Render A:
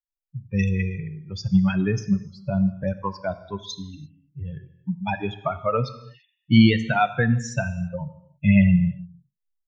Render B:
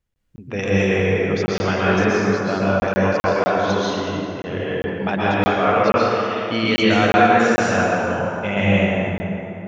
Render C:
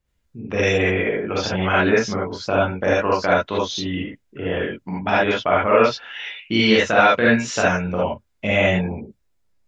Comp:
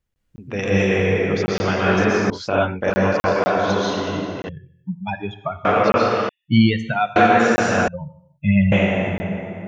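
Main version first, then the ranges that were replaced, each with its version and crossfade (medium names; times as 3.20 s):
B
2.30–2.90 s: from C
4.49–5.65 s: from A
6.29–7.16 s: from A
7.88–8.72 s: from A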